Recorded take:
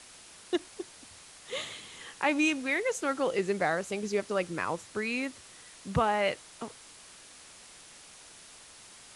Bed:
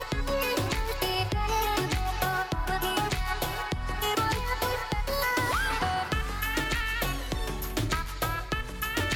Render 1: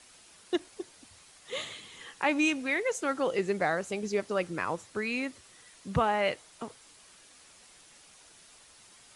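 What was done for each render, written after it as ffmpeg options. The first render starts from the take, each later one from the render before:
-af "afftdn=nr=6:nf=-52"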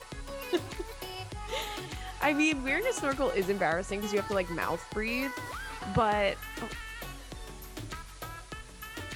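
-filter_complex "[1:a]volume=-12dB[a];[0:a][a]amix=inputs=2:normalize=0"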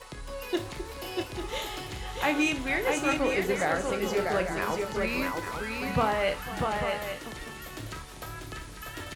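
-filter_complex "[0:a]asplit=2[a][b];[b]adelay=27,volume=-11dB[c];[a][c]amix=inputs=2:normalize=0,aecho=1:1:56|498|642|845:0.224|0.15|0.631|0.355"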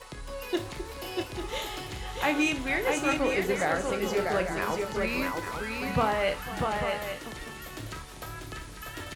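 -af anull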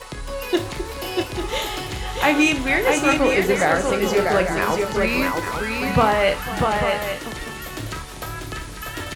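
-af "volume=9dB"

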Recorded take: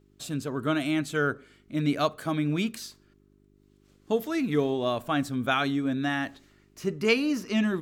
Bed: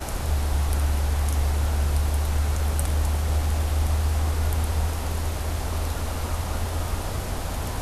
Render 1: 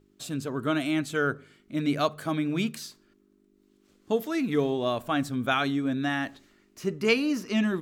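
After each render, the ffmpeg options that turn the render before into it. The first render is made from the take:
-af "bandreject=f=50:t=h:w=4,bandreject=f=100:t=h:w=4,bandreject=f=150:t=h:w=4"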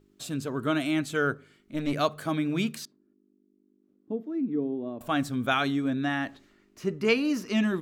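-filter_complex "[0:a]asettb=1/sr,asplit=3[a][b][c];[a]atrim=end=1.344[d];[b]atrim=start=1.34:end=1.93,asetpts=PTS-STARTPTS,afade=t=in:d=0.004:c=qsin,afade=t=out:st=0.586:d=0.004:c=qsin,aeval=exprs='(tanh(8.91*val(0)+0.55)-tanh(0.55))/8.91':c=same[e];[c]atrim=start=1.926[f];[d][e]acrossfade=d=0.004:c1=hsin:c2=qsin[g];[g][f]acrossfade=d=0.004:c1=qsin:c2=hsin,asettb=1/sr,asplit=3[h][i][j];[h]atrim=end=2.854[k];[i]atrim=start=2.85:end=5.01,asetpts=PTS-STARTPTS,afade=t=in:d=0.004:c=qsin,afade=t=out:st=2.156:d=0.004:c=qsin,bandpass=f=270:t=q:w=2.1[l];[j]atrim=start=5.006[m];[k][l]acrossfade=d=0.004:c1=hsin:c2=qsin[n];[n][m]acrossfade=d=0.004:c1=qsin:c2=hsin,asettb=1/sr,asplit=3[o][p][q];[o]atrim=end=5.904[r];[p]atrim=start=5.9:end=7.25,asetpts=PTS-STARTPTS,afade=t=in:d=0.004:c=qsin,afade=t=out:st=1.346:d=0.004:c=qsin,highshelf=f=4.5k:g=-6.5[s];[q]atrim=start=7.246[t];[r][s]acrossfade=d=0.004:c1=hsin:c2=qsin[u];[u][t]acrossfade=d=0.004:c1=qsin:c2=hsin"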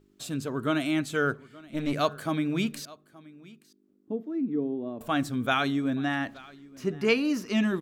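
-af "aecho=1:1:875:0.0794"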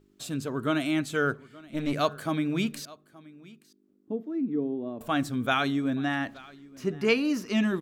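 -af anull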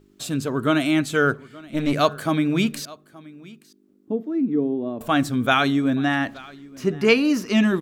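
-af "volume=7dB"

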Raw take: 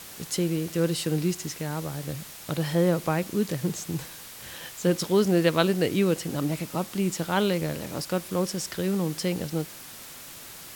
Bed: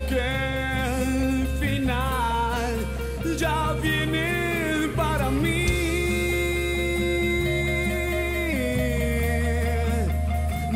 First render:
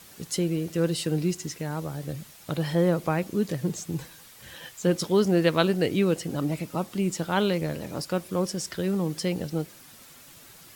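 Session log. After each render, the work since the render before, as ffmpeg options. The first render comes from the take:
-af "afftdn=nr=8:nf=-43"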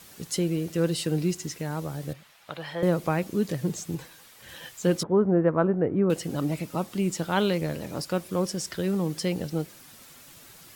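-filter_complex "[0:a]asettb=1/sr,asplit=3[a][b][c];[a]atrim=end=2.134[d];[b]atrim=start=2.13:end=2.83,asetpts=PTS-STARTPTS,afade=t=in:d=0.004:c=qsin,afade=t=out:st=0.696:d=0.004:c=qsin,acrossover=split=580 3900:gain=0.178 1 0.224[e][f][g];[e][f][g]amix=inputs=3:normalize=0[h];[c]atrim=start=2.826[i];[d][h]acrossfade=d=0.004:c1=hsin:c2=qsin[j];[j][i]acrossfade=d=0.004:c1=qsin:c2=hsin,asettb=1/sr,asplit=3[k][l][m];[k]atrim=end=3.954[n];[l]atrim=start=3.95:end=4.49,asetpts=PTS-STARTPTS,afade=t=in:d=0.004:c=qsin,afade=t=out:st=0.536:d=0.004:c=qsin,bass=f=250:g=-6,treble=f=4k:g=-3[o];[m]atrim=start=4.486[p];[n][o]acrossfade=d=0.004:c1=hsin:c2=qsin[q];[q][p]acrossfade=d=0.004:c1=qsin:c2=hsin,asettb=1/sr,asplit=3[r][s][t];[r]atrim=end=5.034[u];[s]atrim=start=5.03:end=6.1,asetpts=PTS-STARTPTS,afade=t=in:d=0.004:c=qsin,afade=t=out:st=1.066:d=0.004:c=qsin,lowpass=f=1.4k:w=0.5412,lowpass=f=1.4k:w=1.3066[v];[t]atrim=start=6.096[w];[u][v]acrossfade=d=0.004:c1=hsin:c2=qsin[x];[x][w]acrossfade=d=0.004:c1=qsin:c2=hsin"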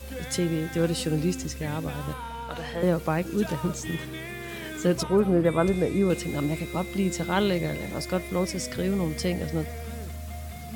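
-filter_complex "[1:a]volume=-12.5dB[a];[0:a][a]amix=inputs=2:normalize=0"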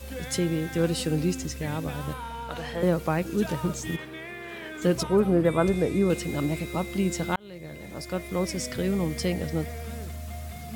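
-filter_complex "[0:a]asettb=1/sr,asplit=3[a][b][c];[a]atrim=end=3.964[d];[b]atrim=start=3.96:end=4.82,asetpts=PTS-STARTPTS,afade=t=in:d=0.004:c=qsin,afade=t=out:st=0.856:d=0.004:c=qsin,bass=f=250:g=-10,treble=f=4k:g=-11[e];[c]atrim=start=4.816[f];[d][e]acrossfade=d=0.004:c1=hsin:c2=qsin[g];[g][f]acrossfade=d=0.004:c1=qsin:c2=hsin,asplit=2[h][i];[h]atrim=end=7.36,asetpts=PTS-STARTPTS,afade=t=out:st=7.356:d=0.004:c=hsin[j];[i]atrim=start=7.36,asetpts=PTS-STARTPTS,afade=t=in:d=1.17[k];[j][k]concat=n=2:v=0:a=1"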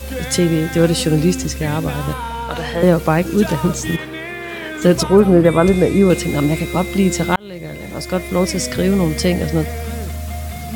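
-af "volume=11dB,alimiter=limit=-1dB:level=0:latency=1"

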